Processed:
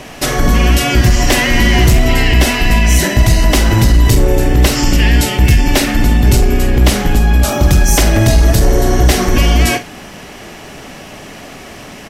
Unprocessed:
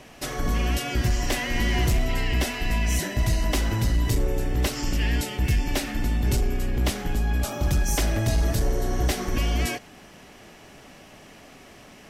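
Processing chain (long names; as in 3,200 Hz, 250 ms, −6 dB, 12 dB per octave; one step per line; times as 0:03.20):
double-tracking delay 49 ms −11.5 dB
boost into a limiter +16.5 dB
level −1 dB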